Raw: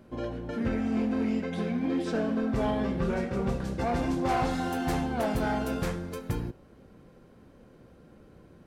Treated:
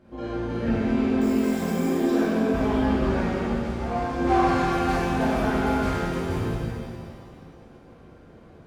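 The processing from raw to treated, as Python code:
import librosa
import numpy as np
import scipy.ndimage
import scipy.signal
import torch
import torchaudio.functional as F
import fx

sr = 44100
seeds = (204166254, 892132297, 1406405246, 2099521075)

y = fx.high_shelf(x, sr, hz=8900.0, db=-12.0)
y = fx.resample_bad(y, sr, factor=6, down='none', up='hold', at=(1.21, 1.9))
y = fx.comb_fb(y, sr, f0_hz=59.0, decay_s=0.2, harmonics='all', damping=0.0, mix_pct=90, at=(3.36, 4.18))
y = fx.rev_shimmer(y, sr, seeds[0], rt60_s=2.1, semitones=7, shimmer_db=-8, drr_db=-9.0)
y = y * 10.0 ** (-4.5 / 20.0)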